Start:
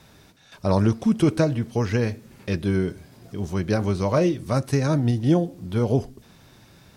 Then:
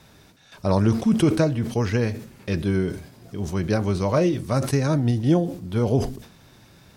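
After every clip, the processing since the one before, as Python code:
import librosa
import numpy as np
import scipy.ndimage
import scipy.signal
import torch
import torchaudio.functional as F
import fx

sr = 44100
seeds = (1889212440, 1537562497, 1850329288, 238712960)

y = fx.sustainer(x, sr, db_per_s=100.0)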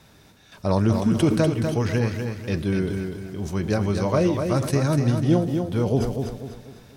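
y = fx.echo_feedback(x, sr, ms=246, feedback_pct=39, wet_db=-6.0)
y = F.gain(torch.from_numpy(y), -1.0).numpy()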